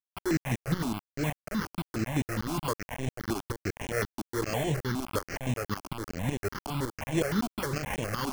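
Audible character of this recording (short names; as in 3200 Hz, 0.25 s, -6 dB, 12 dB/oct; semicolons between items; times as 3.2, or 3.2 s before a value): aliases and images of a low sample rate 3800 Hz, jitter 0%; tremolo saw up 5.4 Hz, depth 75%; a quantiser's noise floor 6-bit, dither none; notches that jump at a steady rate 9.7 Hz 500–4700 Hz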